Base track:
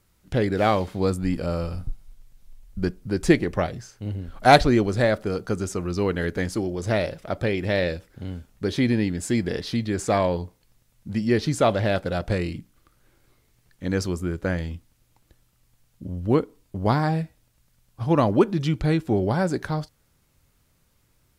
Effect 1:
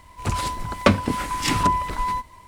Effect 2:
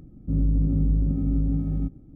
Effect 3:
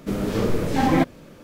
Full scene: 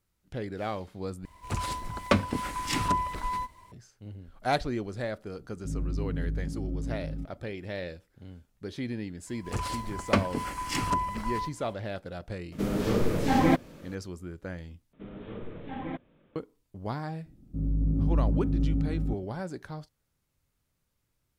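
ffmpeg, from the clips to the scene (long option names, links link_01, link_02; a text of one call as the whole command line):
ffmpeg -i bed.wav -i cue0.wav -i cue1.wav -i cue2.wav -filter_complex "[1:a]asplit=2[link_01][link_02];[2:a]asplit=2[link_03][link_04];[3:a]asplit=2[link_05][link_06];[0:a]volume=-13dB[link_07];[link_02]bandreject=frequency=3700:width=9.6[link_08];[link_06]aresample=8000,aresample=44100[link_09];[link_04]dynaudnorm=framelen=210:gausssize=5:maxgain=5.5dB[link_10];[link_07]asplit=3[link_11][link_12][link_13];[link_11]atrim=end=1.254[link_14];[link_01]atrim=end=2.47,asetpts=PTS-STARTPTS,volume=-7dB[link_15];[link_12]atrim=start=3.716:end=14.934[link_16];[link_09]atrim=end=1.43,asetpts=PTS-STARTPTS,volume=-18dB[link_17];[link_13]atrim=start=16.356[link_18];[link_03]atrim=end=2.15,asetpts=PTS-STARTPTS,volume=-10dB,afade=type=in:duration=0.004:curve=hsin,afade=type=out:start_time=2.146:duration=0.004:curve=hsin,adelay=236817S[link_19];[link_08]atrim=end=2.47,asetpts=PTS-STARTPTS,volume=-8dB,afade=type=in:duration=0.004:curve=hsin,afade=type=out:start_time=2.466:duration=0.004:curve=hsin,adelay=9270[link_20];[link_05]atrim=end=1.43,asetpts=PTS-STARTPTS,volume=-3.5dB,afade=type=in:duration=0.004:curve=hsin,afade=type=out:start_time=1.426:duration=0.004:curve=hsin,adelay=552132S[link_21];[link_10]atrim=end=2.15,asetpts=PTS-STARTPTS,volume=-8.5dB,afade=type=in:duration=0.004:curve=hsin,afade=type=out:start_time=2.146:duration=0.004:curve=hsin,adelay=17260[link_22];[link_14][link_15]acrossfade=duration=0.004:curve1=hsin:curve2=hsin[link_23];[link_23][link_16]acrossfade=duration=0.004:curve1=hsin:curve2=hsin[link_24];[link_24][link_17]acrossfade=duration=0.004:curve1=hsin:curve2=hsin[link_25];[link_25][link_18]acrossfade=duration=0.004:curve1=hsin:curve2=hsin[link_26];[link_26][link_19][link_20][link_21][link_22]amix=inputs=5:normalize=0" out.wav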